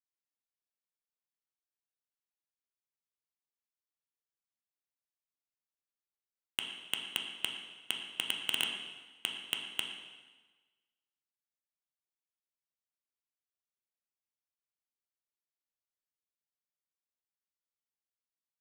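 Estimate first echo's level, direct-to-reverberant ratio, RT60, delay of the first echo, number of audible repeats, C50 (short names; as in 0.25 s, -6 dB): none, 1.5 dB, 1.3 s, none, none, 4.5 dB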